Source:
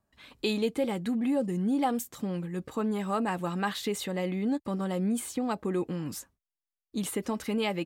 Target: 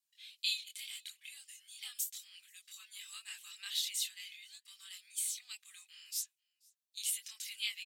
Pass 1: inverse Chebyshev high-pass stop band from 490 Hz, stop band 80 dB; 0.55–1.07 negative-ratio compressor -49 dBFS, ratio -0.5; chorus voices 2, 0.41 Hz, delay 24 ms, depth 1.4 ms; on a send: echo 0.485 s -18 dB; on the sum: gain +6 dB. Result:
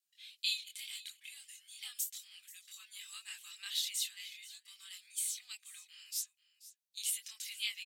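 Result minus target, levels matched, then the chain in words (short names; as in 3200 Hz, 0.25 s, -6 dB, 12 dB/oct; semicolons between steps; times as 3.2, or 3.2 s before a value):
echo-to-direct +11.5 dB
inverse Chebyshev high-pass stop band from 490 Hz, stop band 80 dB; 0.55–1.07 negative-ratio compressor -49 dBFS, ratio -0.5; chorus voices 2, 0.41 Hz, delay 24 ms, depth 1.4 ms; on a send: echo 0.485 s -29.5 dB; on the sum: gain +6 dB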